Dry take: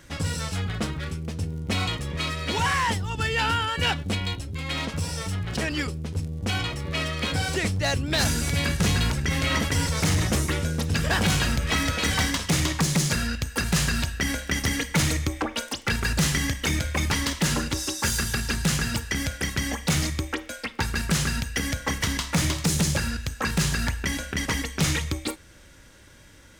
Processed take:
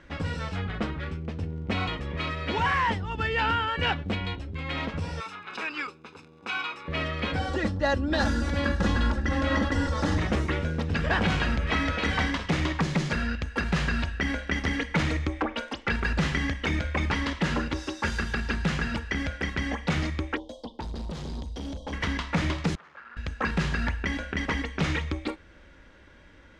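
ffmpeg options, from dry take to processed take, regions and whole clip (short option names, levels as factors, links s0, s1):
-filter_complex "[0:a]asettb=1/sr,asplit=3[s0][s1][s2];[s0]atrim=end=5.204[s3];[s1]atrim=start=5.2:end=6.88,asetpts=PTS-STARTPTS,afade=t=in:d=0.004:c=qsin,afade=t=out:st=1.676:d=0.004:c=qsin,highpass=600,aecho=1:1:0.8:0.64,atrim=end_sample=74088[s4];[s2]atrim=start=6.876[s5];[s3][s4]acrossfade=d=0.004:c1=hsin:c2=qsin[s6];[s6][s5]acrossfade=d=0.004:c1=qsin:c2=hsin,asettb=1/sr,asplit=3[s7][s8][s9];[s7]atrim=end=7.394[s10];[s8]atrim=start=7.39:end=10.18,asetpts=PTS-STARTPTS,afade=t=in:d=0.004:c=qsin,afade=t=out:st=2.786:d=0.004:c=qsin,equalizer=f=2600:w=2.2:g=-8,bandreject=f=2200:w=8.3,aecho=1:1:3.6:0.72,atrim=end_sample=123039[s11];[s9]atrim=start=10.176[s12];[s10][s11]acrossfade=d=0.004:c1=hsin:c2=qsin[s13];[s13][s12]acrossfade=d=0.004:c1=qsin:c2=hsin,asettb=1/sr,asplit=3[s14][s15][s16];[s14]atrim=end=20.374[s17];[s15]atrim=start=20.37:end=21.93,asetpts=PTS-STARTPTS,afade=t=in:d=0.004:c=qsin,afade=t=out:st=1.556:d=0.004:c=qsin,asuperstop=centerf=1800:order=20:qfactor=0.85,asoftclip=type=hard:threshold=0.0316[s18];[s16]atrim=start=21.926[s19];[s17][s18]acrossfade=d=0.004:c1=hsin:c2=qsin[s20];[s20][s19]acrossfade=d=0.004:c1=qsin:c2=hsin,asettb=1/sr,asplit=3[s21][s22][s23];[s21]atrim=end=22.754[s24];[s22]atrim=start=22.75:end=23.17,asetpts=PTS-STARTPTS,afade=t=in:d=0.004:c=qsin,afade=t=out:st=0.416:d=0.004:c=qsin,asoftclip=type=hard:threshold=0.0224,bandpass=f=1300:t=q:w=2.8[s25];[s23]atrim=start=23.166[s26];[s24][s25]acrossfade=d=0.004:c1=hsin:c2=qsin[s27];[s27][s26]acrossfade=d=0.004:c1=qsin:c2=hsin,lowpass=2600,equalizer=f=120:t=o:w=0.53:g=-10.5"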